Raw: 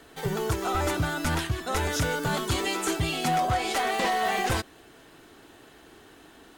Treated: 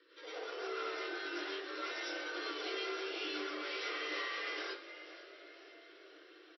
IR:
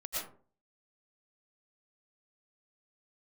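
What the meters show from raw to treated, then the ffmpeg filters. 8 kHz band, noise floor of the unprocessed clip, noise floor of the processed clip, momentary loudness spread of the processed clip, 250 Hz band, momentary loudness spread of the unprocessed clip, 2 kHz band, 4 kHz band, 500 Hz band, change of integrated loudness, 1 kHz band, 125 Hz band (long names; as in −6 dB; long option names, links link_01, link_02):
−21.5 dB, −53 dBFS, −59 dBFS, 18 LU, −15.0 dB, 4 LU, −9.0 dB, −8.5 dB, −11.5 dB, −13.0 dB, −17.5 dB, below −40 dB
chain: -filter_complex "[0:a]asuperstop=centerf=700:order=4:qfactor=1.2,areverse,acompressor=mode=upward:threshold=-50dB:ratio=2.5,areverse,flanger=delay=7.2:depth=4.4:regen=-74:speed=0.53:shape=triangular,aresample=16000,asoftclip=type=hard:threshold=-35dB,aresample=44100,afreqshift=56,asplit=6[link_01][link_02][link_03][link_04][link_05][link_06];[link_02]adelay=496,afreqshift=60,volume=-14.5dB[link_07];[link_03]adelay=992,afreqshift=120,volume=-20.7dB[link_08];[link_04]adelay=1488,afreqshift=180,volume=-26.9dB[link_09];[link_05]adelay=1984,afreqshift=240,volume=-33.1dB[link_10];[link_06]adelay=2480,afreqshift=300,volume=-39.3dB[link_11];[link_01][link_07][link_08][link_09][link_10][link_11]amix=inputs=6:normalize=0[link_12];[1:a]atrim=start_sample=2205,asetrate=48510,aresample=44100[link_13];[link_12][link_13]afir=irnorm=-1:irlink=0,afftfilt=real='re*between(b*sr/4096,280,5800)':imag='im*between(b*sr/4096,280,5800)':win_size=4096:overlap=0.75,volume=-2.5dB"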